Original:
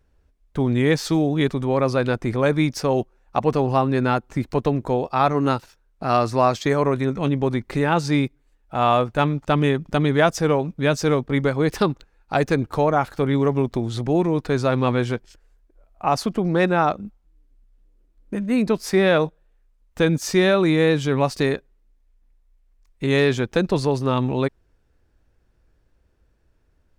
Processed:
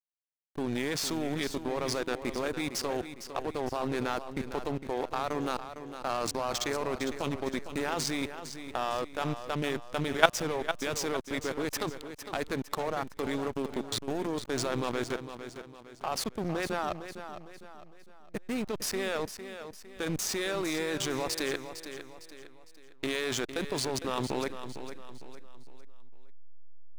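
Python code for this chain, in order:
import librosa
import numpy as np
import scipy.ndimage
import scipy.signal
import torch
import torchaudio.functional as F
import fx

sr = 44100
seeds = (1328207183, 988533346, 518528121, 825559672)

y = fx.riaa(x, sr, side='recording')
y = fx.level_steps(y, sr, step_db=15)
y = fx.backlash(y, sr, play_db=-28.0)
y = fx.echo_feedback(y, sr, ms=456, feedback_pct=41, wet_db=-10.5)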